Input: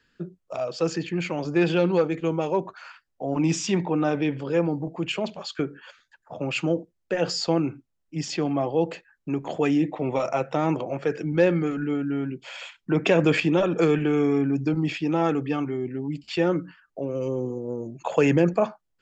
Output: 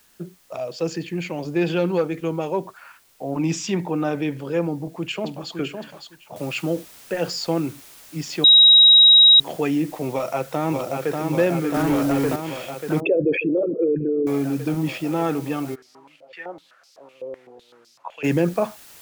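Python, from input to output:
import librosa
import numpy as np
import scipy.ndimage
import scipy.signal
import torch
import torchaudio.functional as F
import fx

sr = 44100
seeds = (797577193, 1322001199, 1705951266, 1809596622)

y = fx.peak_eq(x, sr, hz=1300.0, db=-7.0, octaves=0.55, at=(0.57, 1.67))
y = fx.lowpass(y, sr, hz=2500.0, slope=12, at=(2.65, 3.37), fade=0.02)
y = fx.echo_throw(y, sr, start_s=4.68, length_s=0.89, ms=560, feedback_pct=15, wet_db=-6.0)
y = fx.noise_floor_step(y, sr, seeds[0], at_s=6.36, before_db=-58, after_db=-46, tilt_db=0.0)
y = fx.echo_throw(y, sr, start_s=10.12, length_s=1.11, ms=590, feedback_pct=80, wet_db=-3.5)
y = fx.leveller(y, sr, passes=2, at=(11.74, 12.36))
y = fx.envelope_sharpen(y, sr, power=3.0, at=(13.0, 14.27))
y = fx.filter_held_bandpass(y, sr, hz=7.9, low_hz=540.0, high_hz=5000.0, at=(15.74, 18.23), fade=0.02)
y = fx.edit(y, sr, fx.bleep(start_s=8.44, length_s=0.96, hz=3820.0, db=-7.5), tone=tone)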